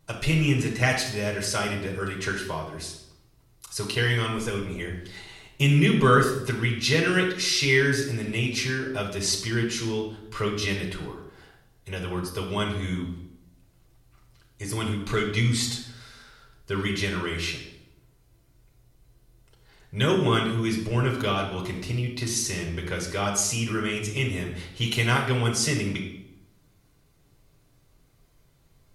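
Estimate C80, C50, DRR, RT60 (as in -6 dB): 8.5 dB, 5.5 dB, -1.5 dB, 0.80 s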